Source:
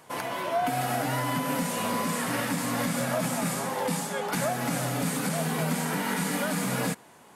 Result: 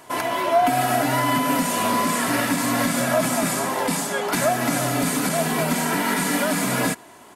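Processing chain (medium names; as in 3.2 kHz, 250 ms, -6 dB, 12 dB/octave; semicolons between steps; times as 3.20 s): comb 3 ms, depth 46%; trim +6.5 dB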